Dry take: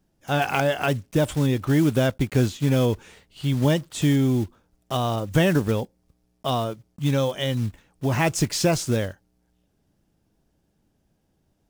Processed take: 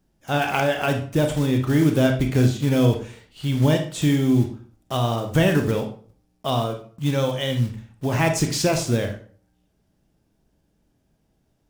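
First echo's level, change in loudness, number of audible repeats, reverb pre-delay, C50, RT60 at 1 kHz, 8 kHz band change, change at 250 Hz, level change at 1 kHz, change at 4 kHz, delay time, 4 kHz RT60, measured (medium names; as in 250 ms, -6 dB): no echo, +1.5 dB, no echo, 28 ms, 8.5 dB, 0.45 s, +1.0 dB, +2.0 dB, +1.0 dB, +1.5 dB, no echo, 0.35 s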